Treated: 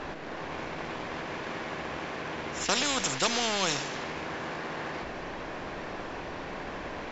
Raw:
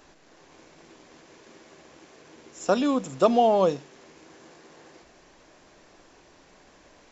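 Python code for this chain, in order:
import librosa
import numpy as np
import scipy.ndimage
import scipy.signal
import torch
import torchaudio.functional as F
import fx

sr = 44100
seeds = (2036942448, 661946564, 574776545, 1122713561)

y = fx.env_lowpass(x, sr, base_hz=2600.0, full_db=-20.0)
y = fx.spectral_comp(y, sr, ratio=4.0)
y = F.gain(torch.from_numpy(y), -4.0).numpy()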